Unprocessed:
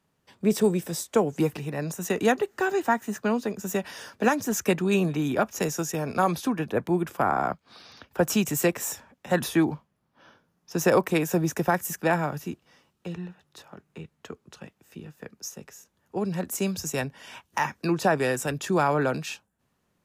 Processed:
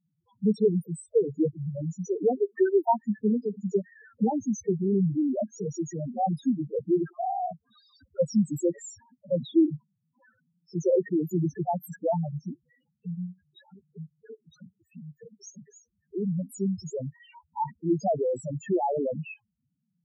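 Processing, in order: 2.49–4.25 transient shaper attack +6 dB, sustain -5 dB; loudest bins only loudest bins 2; gain +3 dB

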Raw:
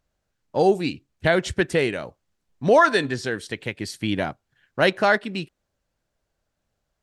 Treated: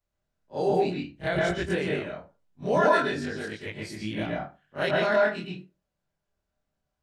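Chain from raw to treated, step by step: short-time reversal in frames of 56 ms; pre-echo 33 ms -12 dB; reverb RT60 0.30 s, pre-delay 0.108 s, DRR -1.5 dB; gain -6.5 dB

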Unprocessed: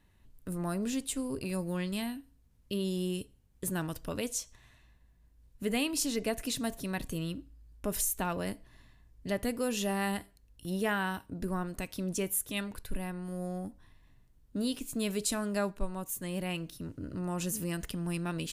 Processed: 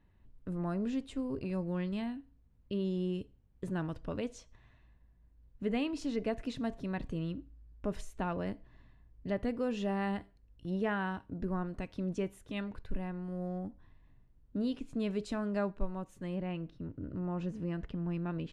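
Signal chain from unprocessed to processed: tape spacing loss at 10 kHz 29 dB, from 16.34 s at 10 kHz 44 dB

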